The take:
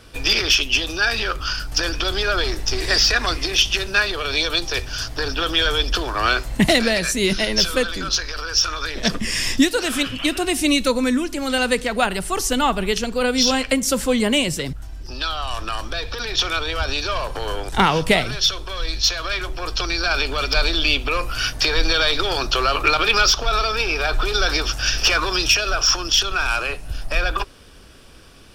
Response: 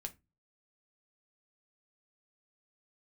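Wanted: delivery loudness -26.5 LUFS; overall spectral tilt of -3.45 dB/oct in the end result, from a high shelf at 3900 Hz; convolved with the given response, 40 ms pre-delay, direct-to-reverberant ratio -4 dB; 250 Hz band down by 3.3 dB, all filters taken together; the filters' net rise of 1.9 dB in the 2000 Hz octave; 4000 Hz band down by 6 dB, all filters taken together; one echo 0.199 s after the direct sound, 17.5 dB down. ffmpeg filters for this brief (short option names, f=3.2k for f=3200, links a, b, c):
-filter_complex "[0:a]equalizer=f=250:t=o:g=-4,equalizer=f=2k:t=o:g=6,highshelf=f=3.9k:g=-7,equalizer=f=4k:t=o:g=-5.5,aecho=1:1:199:0.133,asplit=2[a][b];[1:a]atrim=start_sample=2205,adelay=40[c];[b][c]afir=irnorm=-1:irlink=0,volume=7dB[d];[a][d]amix=inputs=2:normalize=0,volume=-10.5dB"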